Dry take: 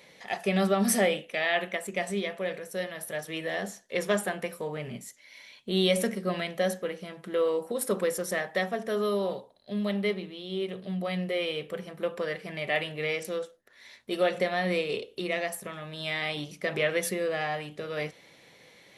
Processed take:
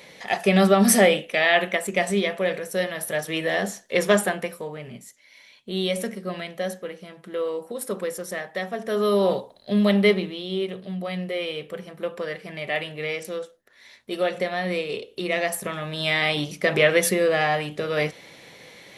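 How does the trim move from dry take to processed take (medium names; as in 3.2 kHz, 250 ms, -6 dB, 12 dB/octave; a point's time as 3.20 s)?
4.21 s +8 dB
4.78 s -1 dB
8.60 s -1 dB
9.32 s +10.5 dB
10.19 s +10.5 dB
10.89 s +1.5 dB
15.00 s +1.5 dB
15.63 s +9 dB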